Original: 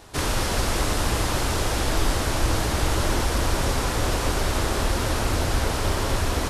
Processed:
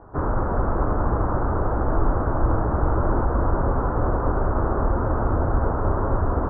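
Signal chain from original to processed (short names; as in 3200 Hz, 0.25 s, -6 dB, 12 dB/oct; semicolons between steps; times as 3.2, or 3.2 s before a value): steep low-pass 1400 Hz 48 dB/oct; gain +2.5 dB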